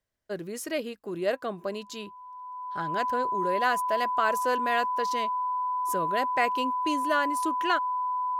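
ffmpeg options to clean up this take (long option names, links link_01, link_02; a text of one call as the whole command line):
ffmpeg -i in.wav -af "bandreject=frequency=1000:width=30" out.wav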